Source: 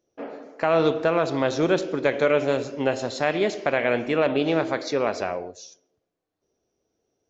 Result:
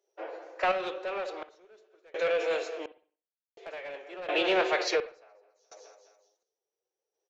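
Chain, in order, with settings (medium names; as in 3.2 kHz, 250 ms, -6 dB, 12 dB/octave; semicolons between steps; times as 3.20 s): formant-preserving pitch shift +2.5 st; steep high-pass 380 Hz 48 dB/octave; feedback delay 210 ms, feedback 43%, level -14 dB; saturation -18.5 dBFS, distortion -14 dB; random-step tremolo 1.4 Hz, depth 100%; on a send at -15 dB: reverberation, pre-delay 56 ms; on the sum: dynamic bell 2.6 kHz, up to +6 dB, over -47 dBFS, Q 0.97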